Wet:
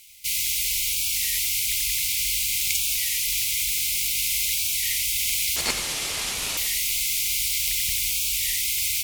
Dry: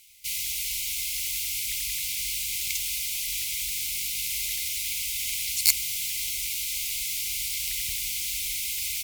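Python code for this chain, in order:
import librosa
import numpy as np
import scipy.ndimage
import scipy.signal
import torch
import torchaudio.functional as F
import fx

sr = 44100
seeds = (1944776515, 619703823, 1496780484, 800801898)

y = fx.cvsd(x, sr, bps=64000, at=(5.56, 6.59))
y = fx.notch(y, sr, hz=1500.0, q=20.0)
y = y + 10.0 ** (-10.5 / 20.0) * np.pad(y, (int(91 * sr / 1000.0), 0))[:len(y)]
y = fx.rev_plate(y, sr, seeds[0], rt60_s=1.9, hf_ratio=0.9, predelay_ms=0, drr_db=14.5)
y = fx.record_warp(y, sr, rpm=33.33, depth_cents=160.0)
y = F.gain(torch.from_numpy(y), 5.0).numpy()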